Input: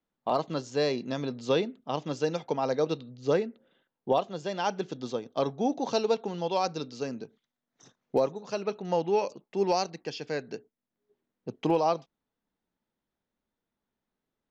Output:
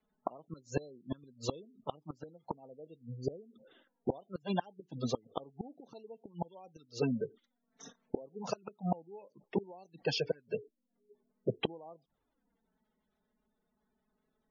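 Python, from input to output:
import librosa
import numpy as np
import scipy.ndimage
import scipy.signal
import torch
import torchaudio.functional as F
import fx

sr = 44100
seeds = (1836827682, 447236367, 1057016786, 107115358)

y = fx.env_flanger(x, sr, rest_ms=4.7, full_db=-24.0)
y = fx.gate_flip(y, sr, shuts_db=-27.0, range_db=-31)
y = fx.spec_gate(y, sr, threshold_db=-20, keep='strong')
y = y * 10.0 ** (8.5 / 20.0)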